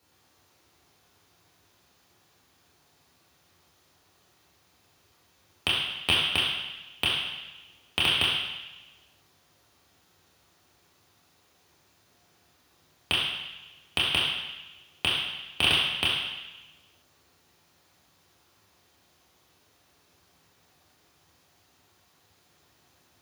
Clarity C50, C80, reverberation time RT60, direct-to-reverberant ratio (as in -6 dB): 0.5 dB, 3.0 dB, 1.0 s, -5.5 dB